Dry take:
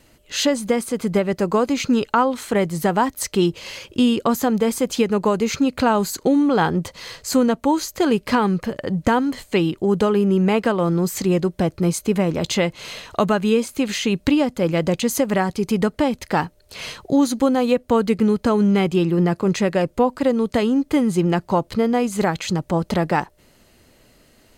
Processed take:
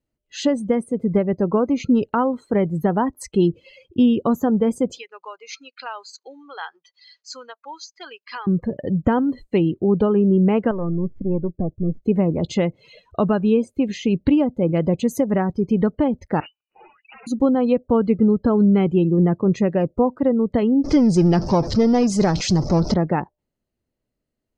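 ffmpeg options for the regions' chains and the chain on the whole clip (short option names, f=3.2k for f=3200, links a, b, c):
-filter_complex "[0:a]asettb=1/sr,asplit=3[a][b][c];[a]atrim=end=4.984[d];[b]atrim=start=4.98:end=8.47,asetpts=PTS-STARTPTS,afade=t=in:d=0.004:c=qsin,afade=t=out:st=3.486:d=0.004:c=qsin,highpass=1.5k,highshelf=f=7.7k:t=q:w=1.5:g=-12[e];[c]atrim=start=8.466[f];[d][e]acrossfade=d=0.004:c1=hsin:c2=qsin[g];[g][f]acrossfade=d=0.004:c1=qsin:c2=hsin,asettb=1/sr,asplit=3[h][i][j];[h]atrim=end=10.714[k];[i]atrim=start=10.71:end=12.03,asetpts=PTS-STARTPTS,afade=t=in:d=0.004:c=qsin,afade=t=out:st=1.316:d=0.004:c=qsin,aeval=exprs='if(lt(val(0),0),0.447*val(0),val(0))':c=same,lowpass=1.7k,equalizer=f=630:w=0.48:g=-3[l];[j]atrim=start=12.026[m];[k][l]acrossfade=d=0.004:c1=hsin:c2=qsin[n];[n][m]acrossfade=d=0.004:c1=qsin:c2=hsin,asettb=1/sr,asplit=3[o][p][q];[o]atrim=end=16.404[r];[p]atrim=start=16.4:end=17.27,asetpts=PTS-STARTPTS,afade=t=in:d=0.004:c=qsin,afade=t=out:st=0.866:d=0.004:c=qsin,highpass=f=64:p=1,aeval=exprs='(mod(17.8*val(0)+1,2)-1)/17.8':c=same,lowpass=f=2.6k:t=q:w=0.5098,lowpass=f=2.6k:t=q:w=0.6013,lowpass=f=2.6k:t=q:w=0.9,lowpass=f=2.6k:t=q:w=2.563,afreqshift=-3000[s];[q]atrim=start=17.266[t];[r][s]acrossfade=d=0.004:c1=hsin:c2=qsin[u];[u][t]acrossfade=d=0.004:c1=qsin:c2=hsin,asettb=1/sr,asplit=3[v][w][x];[v]atrim=end=20.844[y];[w]atrim=start=20.84:end=22.94,asetpts=PTS-STARTPTS,afade=t=in:d=0.004:c=qsin,afade=t=out:st=2.096:d=0.004:c=qsin,aeval=exprs='val(0)+0.5*0.0841*sgn(val(0))':c=same,lowpass=11k,equalizer=f=5.3k:t=o:w=0.66:g=14[z];[x]atrim=start=22.936[aa];[y][z]acrossfade=d=0.004:c1=hsin:c2=qsin[ab];[ab][aa]acrossfade=d=0.004:c1=qsin:c2=hsin,afftdn=nr=27:nf=-30,tiltshelf=f=780:g=5.5,volume=-3dB"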